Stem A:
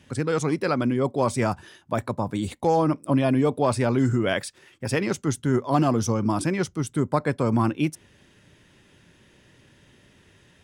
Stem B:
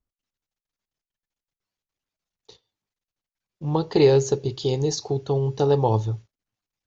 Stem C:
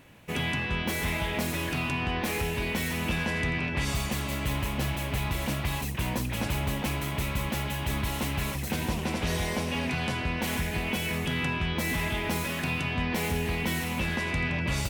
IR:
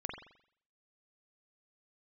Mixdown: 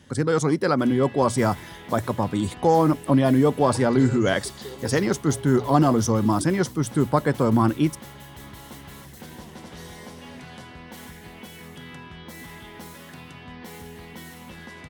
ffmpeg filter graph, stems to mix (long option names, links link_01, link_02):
-filter_complex "[0:a]bandreject=frequency=60:width_type=h:width=6,bandreject=frequency=120:width_type=h:width=6,volume=3dB[link_01];[1:a]highpass=420,acompressor=threshold=-26dB:ratio=6,volume=-8dB[link_02];[2:a]highpass=frequency=130:poles=1,adelay=500,volume=-9.5dB[link_03];[link_01][link_02][link_03]amix=inputs=3:normalize=0,equalizer=frequency=2500:width=4.8:gain=-10.5,bandreject=frequency=630:width=20"